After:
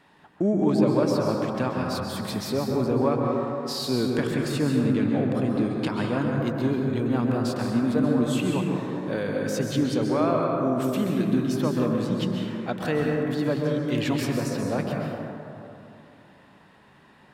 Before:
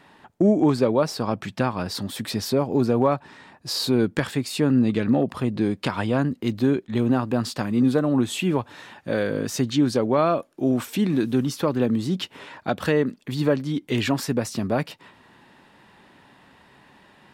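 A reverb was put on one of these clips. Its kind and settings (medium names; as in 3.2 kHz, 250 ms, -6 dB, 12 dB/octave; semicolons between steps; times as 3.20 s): plate-style reverb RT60 2.8 s, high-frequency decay 0.3×, pre-delay 115 ms, DRR -0.5 dB; trim -5.5 dB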